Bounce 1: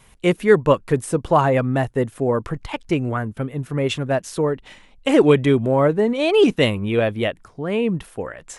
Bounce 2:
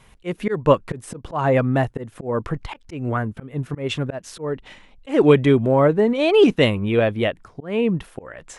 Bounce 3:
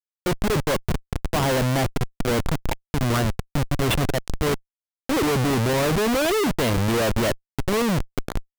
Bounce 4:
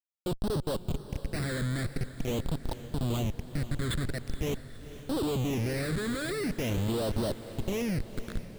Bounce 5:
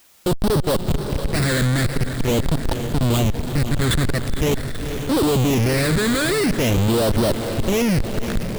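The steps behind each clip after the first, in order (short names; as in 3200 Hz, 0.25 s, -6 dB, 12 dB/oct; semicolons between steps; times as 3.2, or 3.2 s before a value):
high shelf 7400 Hz -10 dB; auto swell 0.191 s; gain +1 dB
Schmitt trigger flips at -27 dBFS
phaser stages 8, 0.45 Hz, lowest notch 800–2200 Hz; diffused feedback echo 0.483 s, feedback 58%, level -13.5 dB; gain -8.5 dB
power-law curve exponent 0.5; gain +8 dB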